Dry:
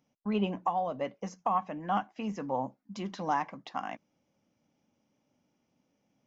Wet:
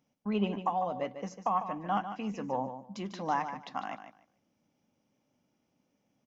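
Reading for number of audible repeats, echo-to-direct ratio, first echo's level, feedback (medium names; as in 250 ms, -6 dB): 2, -10.0 dB, -10.0 dB, 18%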